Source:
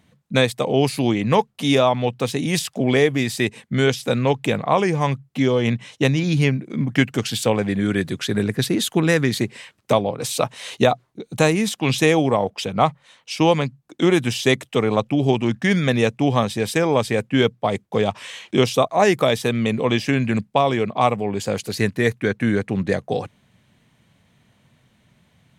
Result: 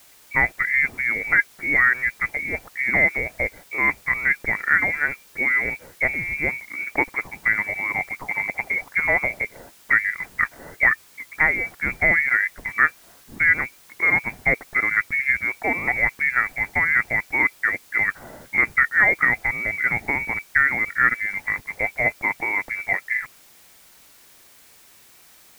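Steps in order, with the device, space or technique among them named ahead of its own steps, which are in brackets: scrambled radio voice (BPF 320–2800 Hz; inverted band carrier 2500 Hz; white noise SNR 28 dB)

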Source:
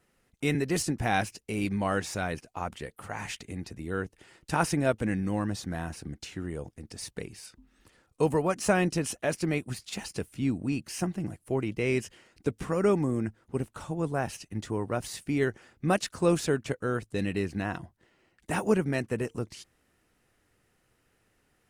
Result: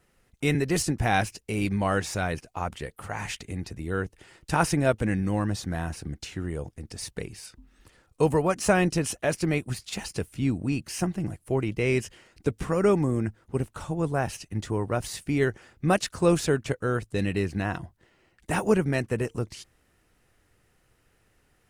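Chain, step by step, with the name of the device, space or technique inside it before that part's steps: low shelf boost with a cut just above (low shelf 92 Hz +6.5 dB; bell 240 Hz -2.5 dB 0.8 oct); gain +3 dB

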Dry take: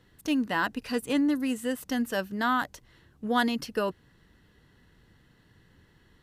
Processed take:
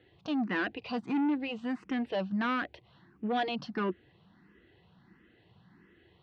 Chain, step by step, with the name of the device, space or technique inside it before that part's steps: barber-pole phaser into a guitar amplifier (endless phaser +1.5 Hz; soft clip -29 dBFS, distortion -10 dB; speaker cabinet 79–3700 Hz, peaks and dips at 190 Hz +7 dB, 350 Hz +8 dB, 730 Hz +7 dB, 1100 Hz +3 dB, 2400 Hz +4 dB); high shelf 5000 Hz +5.5 dB

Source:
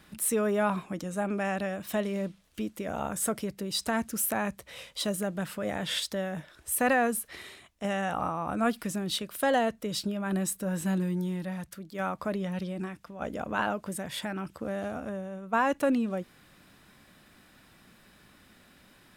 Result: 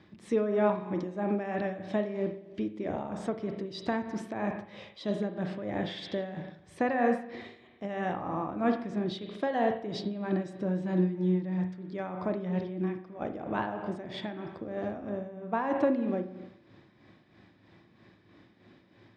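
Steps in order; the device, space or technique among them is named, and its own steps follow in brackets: combo amplifier with spring reverb and tremolo (spring tank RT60 1 s, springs 38/49 ms, chirp 45 ms, DRR 5 dB; tremolo 3.1 Hz, depth 58%; speaker cabinet 90–4400 Hz, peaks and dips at 110 Hz +10 dB, 340 Hz +9 dB, 1400 Hz -9 dB, 2800 Hz -8 dB, 4100 Hz -4 dB)

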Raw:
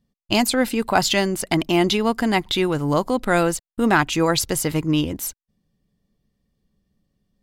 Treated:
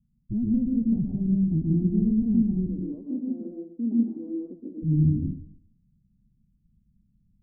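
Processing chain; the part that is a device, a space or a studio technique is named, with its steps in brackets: 2.66–4.82 elliptic high-pass 240 Hz, stop band 40 dB; club heard from the street (limiter -9 dBFS, peak gain reduction 6 dB; LPF 200 Hz 24 dB/oct; reverb RT60 0.60 s, pre-delay 0.116 s, DRR -0.5 dB); gain +2.5 dB

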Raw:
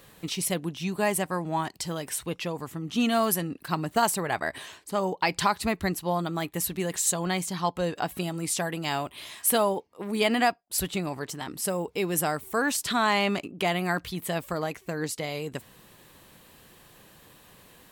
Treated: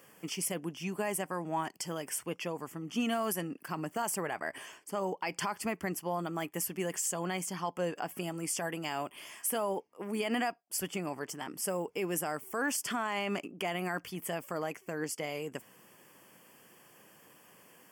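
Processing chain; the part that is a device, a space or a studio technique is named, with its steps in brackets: PA system with an anti-feedback notch (HPF 190 Hz 12 dB/oct; Butterworth band-stop 3900 Hz, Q 2.9; limiter -19 dBFS, peak gain reduction 9.5 dB); gain -4 dB

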